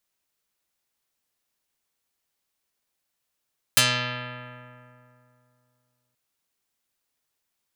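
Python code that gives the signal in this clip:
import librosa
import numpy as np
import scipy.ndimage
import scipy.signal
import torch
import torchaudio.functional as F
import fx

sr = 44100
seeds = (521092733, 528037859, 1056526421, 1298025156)

y = fx.pluck(sr, length_s=2.38, note=47, decay_s=2.7, pick=0.34, brightness='dark')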